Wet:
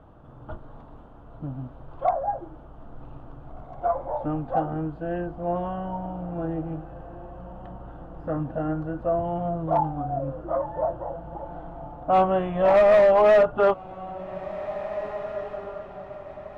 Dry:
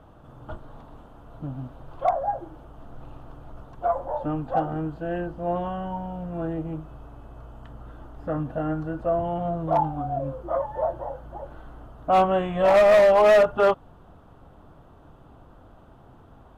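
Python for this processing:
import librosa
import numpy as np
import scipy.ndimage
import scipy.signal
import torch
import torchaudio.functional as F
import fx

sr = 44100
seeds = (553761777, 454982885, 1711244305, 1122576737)

y = fx.lowpass(x, sr, hz=1900.0, slope=6)
y = fx.echo_diffused(y, sr, ms=1931, feedback_pct=41, wet_db=-14.5)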